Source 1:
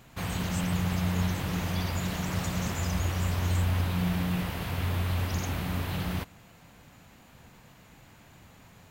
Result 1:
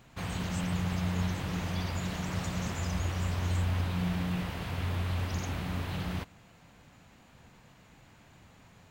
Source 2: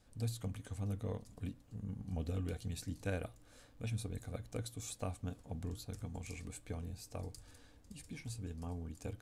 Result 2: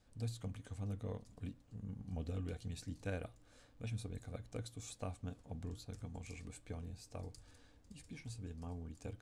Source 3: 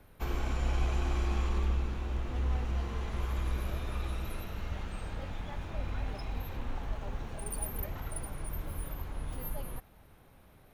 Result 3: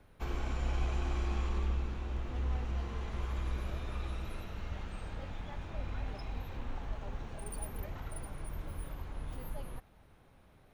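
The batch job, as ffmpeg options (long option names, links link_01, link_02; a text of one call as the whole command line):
ffmpeg -i in.wav -af "equalizer=frequency=13000:width_type=o:width=0.57:gain=-11,volume=-3dB" out.wav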